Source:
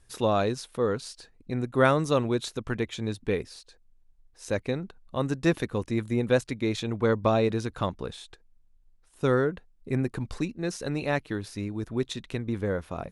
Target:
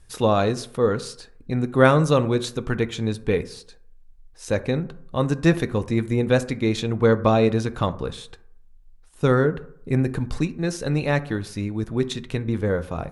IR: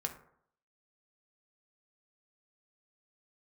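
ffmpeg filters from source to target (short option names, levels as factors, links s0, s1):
-filter_complex "[0:a]lowshelf=f=93:g=6.5,asplit=2[s0][s1];[1:a]atrim=start_sample=2205[s2];[s1][s2]afir=irnorm=-1:irlink=0,volume=0.75[s3];[s0][s3]amix=inputs=2:normalize=0"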